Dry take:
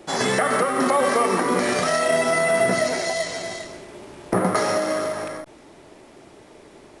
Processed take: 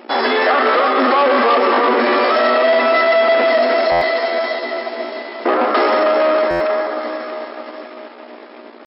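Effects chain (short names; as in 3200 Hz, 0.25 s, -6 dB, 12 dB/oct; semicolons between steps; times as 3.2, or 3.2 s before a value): echo with dull and thin repeats by turns 0.25 s, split 1300 Hz, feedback 65%, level -5 dB; hum 60 Hz, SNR 18 dB; high shelf 2400 Hz -11.5 dB; tempo 0.79×; low shelf 450 Hz -11.5 dB; sample leveller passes 3; FFT band-pass 210–5400 Hz; stuck buffer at 3.91/6.5, samples 512, times 8; gain +3.5 dB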